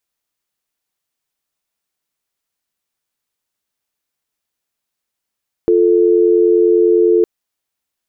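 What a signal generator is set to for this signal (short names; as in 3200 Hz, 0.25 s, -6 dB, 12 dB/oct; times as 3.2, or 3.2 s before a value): call progress tone dial tone, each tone -11 dBFS 1.56 s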